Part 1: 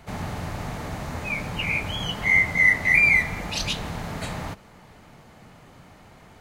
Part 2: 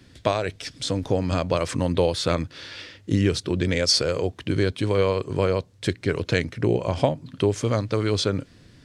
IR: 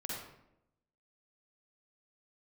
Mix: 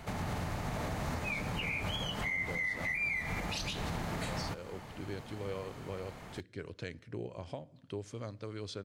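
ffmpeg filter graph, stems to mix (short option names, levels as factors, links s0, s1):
-filter_complex "[0:a]acompressor=threshold=0.0562:ratio=2.5,volume=1.12[s0];[1:a]adelay=500,volume=0.106,asplit=2[s1][s2];[s2]volume=0.0668[s3];[2:a]atrim=start_sample=2205[s4];[s3][s4]afir=irnorm=-1:irlink=0[s5];[s0][s1][s5]amix=inputs=3:normalize=0,alimiter=level_in=1.41:limit=0.0631:level=0:latency=1:release=217,volume=0.708"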